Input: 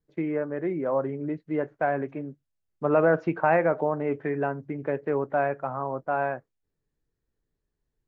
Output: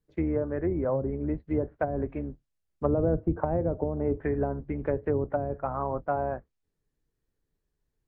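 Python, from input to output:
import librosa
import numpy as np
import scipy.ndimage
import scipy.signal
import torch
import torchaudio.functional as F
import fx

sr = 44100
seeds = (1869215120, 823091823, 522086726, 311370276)

y = fx.octave_divider(x, sr, octaves=2, level_db=-3.0)
y = fx.env_lowpass_down(y, sr, base_hz=400.0, full_db=-20.5)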